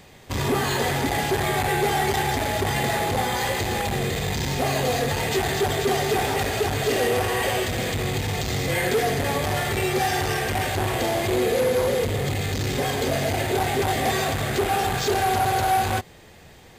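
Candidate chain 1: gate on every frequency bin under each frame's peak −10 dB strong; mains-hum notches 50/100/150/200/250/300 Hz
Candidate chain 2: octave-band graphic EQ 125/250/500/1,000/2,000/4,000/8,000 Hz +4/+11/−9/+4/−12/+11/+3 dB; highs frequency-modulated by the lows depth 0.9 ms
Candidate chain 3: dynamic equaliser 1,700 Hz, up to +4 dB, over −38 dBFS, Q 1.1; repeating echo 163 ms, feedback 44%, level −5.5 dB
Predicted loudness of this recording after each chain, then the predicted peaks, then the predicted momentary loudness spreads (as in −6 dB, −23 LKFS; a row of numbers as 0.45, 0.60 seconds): −26.5, −21.5, −21.0 LKFS; −14.5, −7.5, −9.0 dBFS; 6, 2, 4 LU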